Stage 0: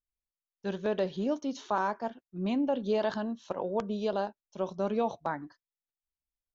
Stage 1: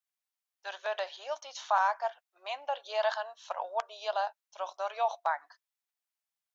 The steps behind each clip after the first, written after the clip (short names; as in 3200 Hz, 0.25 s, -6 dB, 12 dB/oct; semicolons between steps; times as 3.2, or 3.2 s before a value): elliptic high-pass 680 Hz, stop band 70 dB; gain +4.5 dB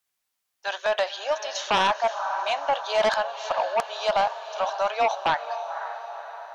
diffused feedback echo 0.522 s, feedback 53%, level -12 dB; sine folder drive 9 dB, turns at -15 dBFS; gain -1.5 dB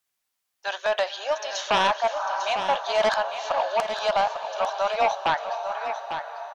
echo 0.849 s -9 dB